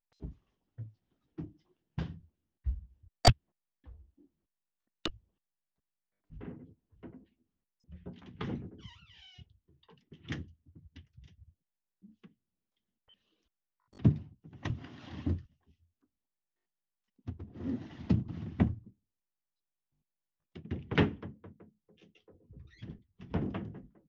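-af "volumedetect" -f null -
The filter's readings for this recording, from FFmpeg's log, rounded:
mean_volume: -38.9 dB
max_volume: -11.2 dB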